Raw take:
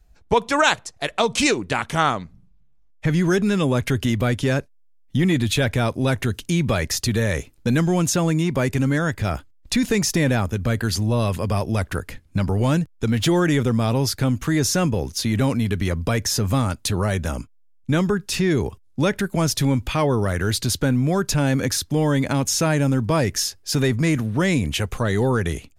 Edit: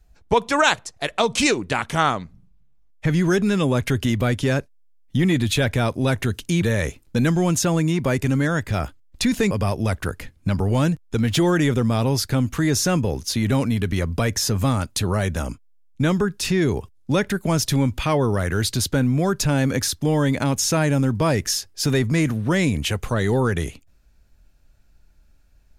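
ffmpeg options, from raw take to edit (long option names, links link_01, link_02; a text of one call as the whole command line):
ffmpeg -i in.wav -filter_complex "[0:a]asplit=3[link_01][link_02][link_03];[link_01]atrim=end=6.622[link_04];[link_02]atrim=start=7.128:end=10.022[link_05];[link_03]atrim=start=11.398[link_06];[link_04][link_05]acrossfade=duration=0.004:curve1=hsin:curve2=hsin[link_07];[link_07][link_06]acrossfade=duration=0.004:curve1=hsin:curve2=hsin" out.wav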